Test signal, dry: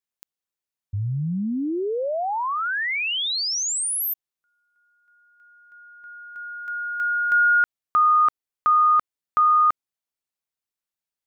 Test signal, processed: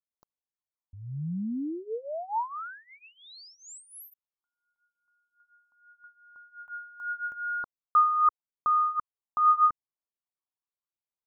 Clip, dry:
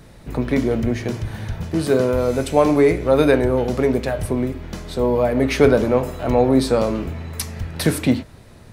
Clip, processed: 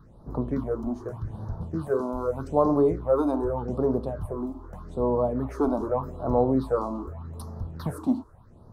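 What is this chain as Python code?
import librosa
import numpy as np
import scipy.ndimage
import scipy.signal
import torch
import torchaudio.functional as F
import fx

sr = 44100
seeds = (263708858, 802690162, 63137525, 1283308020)

y = fx.high_shelf_res(x, sr, hz=1600.0, db=-12.0, q=3.0)
y = fx.phaser_stages(y, sr, stages=6, low_hz=120.0, high_hz=2700.0, hz=0.83, feedback_pct=25)
y = y * 10.0 ** (-7.5 / 20.0)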